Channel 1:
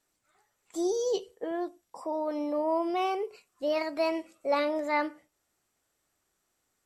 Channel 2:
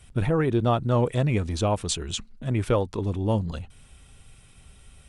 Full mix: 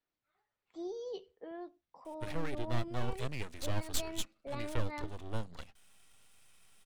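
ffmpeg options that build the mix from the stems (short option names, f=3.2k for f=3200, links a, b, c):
-filter_complex "[0:a]lowpass=f=4.4k:w=0.5412,lowpass=f=4.4k:w=1.3066,volume=-11.5dB[a];[1:a]highpass=520,aeval=exprs='max(val(0),0)':c=same,adelay=2050,volume=-4dB[b];[a][b]amix=inputs=2:normalize=0,asubboost=boost=2.5:cutoff=230,acrossover=split=410|3000[c][d][e];[d]acompressor=threshold=-43dB:ratio=2.5[f];[c][f][e]amix=inputs=3:normalize=0"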